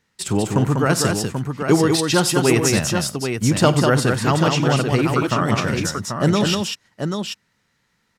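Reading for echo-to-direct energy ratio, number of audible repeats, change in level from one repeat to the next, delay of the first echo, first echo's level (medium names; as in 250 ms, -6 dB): -2.0 dB, 4, no regular repeats, 50 ms, -18.0 dB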